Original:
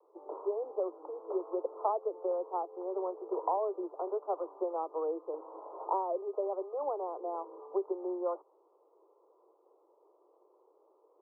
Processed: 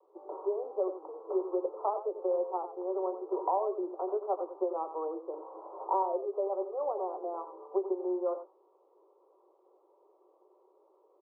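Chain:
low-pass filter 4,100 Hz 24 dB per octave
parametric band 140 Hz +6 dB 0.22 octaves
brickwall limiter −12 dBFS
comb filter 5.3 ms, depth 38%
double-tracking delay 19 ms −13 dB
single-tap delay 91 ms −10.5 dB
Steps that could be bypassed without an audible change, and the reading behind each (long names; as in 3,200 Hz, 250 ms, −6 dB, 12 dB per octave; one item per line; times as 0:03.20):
low-pass filter 4,100 Hz: nothing at its input above 1,400 Hz
parametric band 140 Hz: nothing at its input below 290 Hz
brickwall limiter −12 dBFS: peak of its input −17.0 dBFS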